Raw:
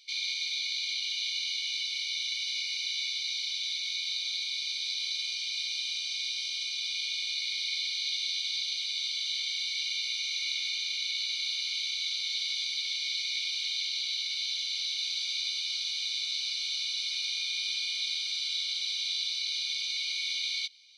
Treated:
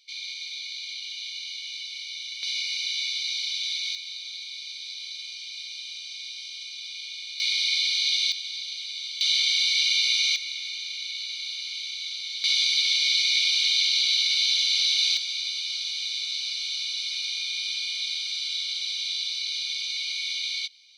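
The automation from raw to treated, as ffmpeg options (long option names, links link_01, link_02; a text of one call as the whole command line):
ffmpeg -i in.wav -af "asetnsamples=nb_out_samples=441:pad=0,asendcmd='2.43 volume volume 4dB;3.95 volume volume -4dB;7.4 volume volume 8dB;8.32 volume volume -1.5dB;9.21 volume volume 10dB;10.36 volume volume -1dB;12.44 volume volume 10dB;15.17 volume volume 2.5dB',volume=-3dB" out.wav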